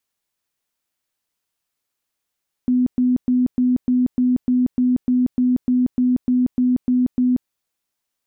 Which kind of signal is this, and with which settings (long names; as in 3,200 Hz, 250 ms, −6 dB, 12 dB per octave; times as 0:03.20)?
tone bursts 250 Hz, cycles 46, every 0.30 s, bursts 16, −13.5 dBFS